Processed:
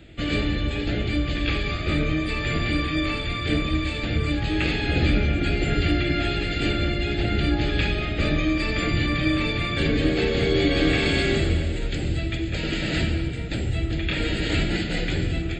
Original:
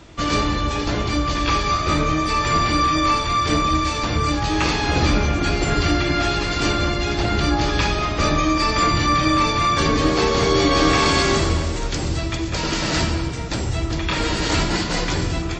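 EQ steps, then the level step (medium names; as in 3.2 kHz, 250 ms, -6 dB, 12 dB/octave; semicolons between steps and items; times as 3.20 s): static phaser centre 2.5 kHz, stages 4; -1.5 dB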